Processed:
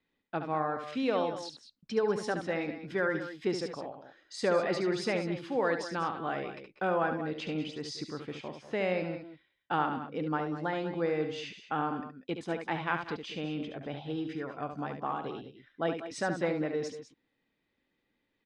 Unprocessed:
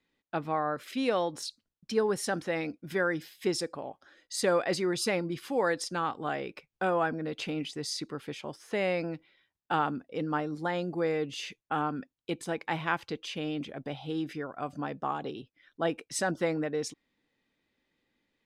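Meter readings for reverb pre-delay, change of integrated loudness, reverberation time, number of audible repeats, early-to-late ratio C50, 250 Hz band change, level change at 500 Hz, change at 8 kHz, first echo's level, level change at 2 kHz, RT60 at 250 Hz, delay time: none, -1.0 dB, none, 2, none, -1.0 dB, -1.0 dB, -10.0 dB, -7.5 dB, -1.5 dB, none, 71 ms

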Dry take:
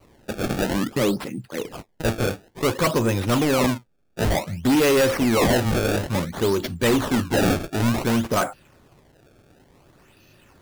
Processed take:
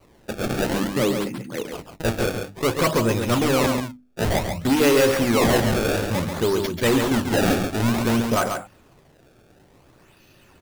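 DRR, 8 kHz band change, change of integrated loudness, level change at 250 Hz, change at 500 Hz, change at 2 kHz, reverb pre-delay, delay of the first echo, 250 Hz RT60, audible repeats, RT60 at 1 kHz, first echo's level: none, +1.0 dB, +0.5 dB, 0.0 dB, +1.0 dB, +1.0 dB, none, 0.138 s, none, 1, none, -6.0 dB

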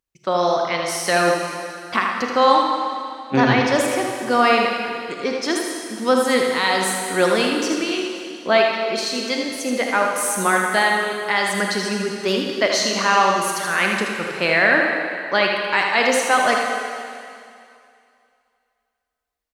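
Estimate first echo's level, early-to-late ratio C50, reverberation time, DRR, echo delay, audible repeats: -5.5 dB, 0.5 dB, 2.4 s, 0.0 dB, 79 ms, 1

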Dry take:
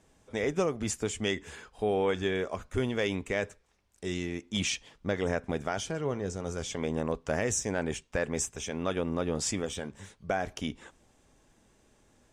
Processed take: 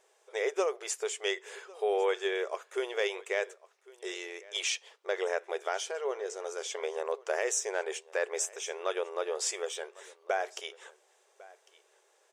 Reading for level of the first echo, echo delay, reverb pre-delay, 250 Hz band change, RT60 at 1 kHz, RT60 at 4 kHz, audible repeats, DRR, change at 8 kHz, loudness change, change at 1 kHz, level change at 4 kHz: -22.0 dB, 1.101 s, none, -13.0 dB, none, none, 1, none, 0.0 dB, -1.5 dB, 0.0 dB, 0.0 dB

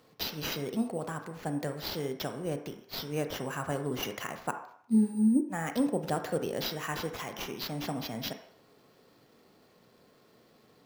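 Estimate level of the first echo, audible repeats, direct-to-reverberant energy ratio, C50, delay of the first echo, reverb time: none, none, 6.5 dB, 9.0 dB, none, 0.60 s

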